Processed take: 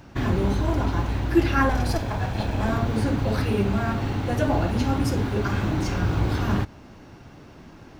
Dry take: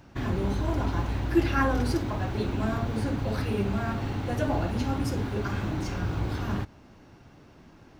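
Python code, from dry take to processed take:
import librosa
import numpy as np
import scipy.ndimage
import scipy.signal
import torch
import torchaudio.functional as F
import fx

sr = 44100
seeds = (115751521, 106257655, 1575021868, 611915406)

y = fx.lower_of_two(x, sr, delay_ms=1.2, at=(1.69, 2.7))
y = fx.rider(y, sr, range_db=10, speed_s=2.0)
y = F.gain(torch.from_numpy(y), 4.5).numpy()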